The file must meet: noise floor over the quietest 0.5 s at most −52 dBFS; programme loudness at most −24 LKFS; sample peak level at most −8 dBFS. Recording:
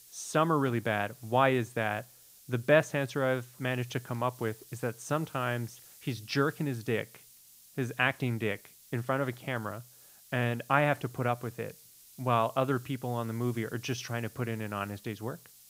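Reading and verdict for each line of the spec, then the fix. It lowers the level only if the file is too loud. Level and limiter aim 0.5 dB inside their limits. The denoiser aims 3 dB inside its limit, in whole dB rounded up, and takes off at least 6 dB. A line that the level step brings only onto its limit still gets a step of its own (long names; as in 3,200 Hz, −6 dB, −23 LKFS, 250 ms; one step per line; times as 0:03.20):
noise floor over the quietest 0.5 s −57 dBFS: in spec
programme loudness −31.5 LKFS: in spec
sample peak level −9.0 dBFS: in spec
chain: no processing needed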